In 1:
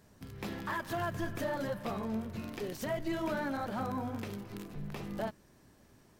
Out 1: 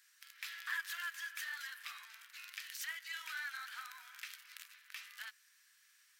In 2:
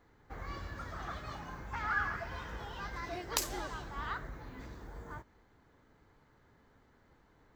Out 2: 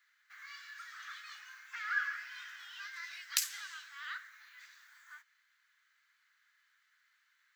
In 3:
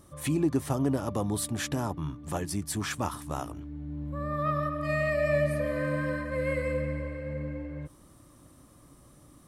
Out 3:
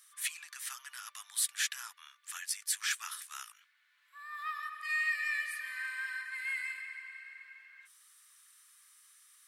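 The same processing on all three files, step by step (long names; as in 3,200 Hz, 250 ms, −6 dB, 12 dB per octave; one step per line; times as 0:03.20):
Butterworth high-pass 1,500 Hz 36 dB per octave
level +2.5 dB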